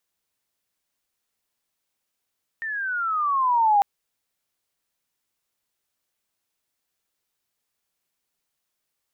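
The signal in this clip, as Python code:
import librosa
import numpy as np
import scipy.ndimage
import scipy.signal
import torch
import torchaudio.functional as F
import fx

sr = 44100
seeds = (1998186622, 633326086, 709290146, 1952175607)

y = fx.riser_tone(sr, length_s=1.2, level_db=-14, wave='sine', hz=1830.0, rise_st=-14.5, swell_db=13)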